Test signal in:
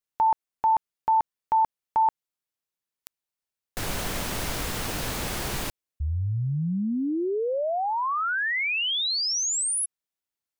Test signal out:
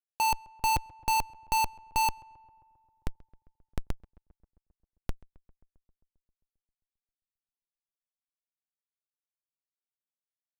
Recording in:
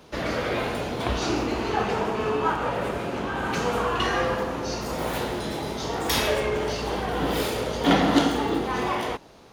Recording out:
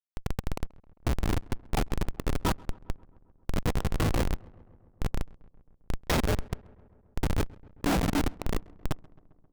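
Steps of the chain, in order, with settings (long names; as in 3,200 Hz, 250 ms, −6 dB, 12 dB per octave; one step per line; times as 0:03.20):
reverb reduction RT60 1.1 s
comparator with hysteresis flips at −20 dBFS
feedback echo with a low-pass in the loop 133 ms, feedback 71%, low-pass 2,200 Hz, level −24 dB
level +4 dB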